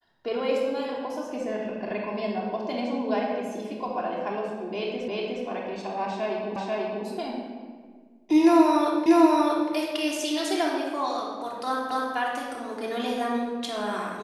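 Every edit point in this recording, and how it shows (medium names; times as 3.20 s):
5.08 s: repeat of the last 0.36 s
6.56 s: repeat of the last 0.49 s
9.06 s: repeat of the last 0.64 s
11.91 s: repeat of the last 0.25 s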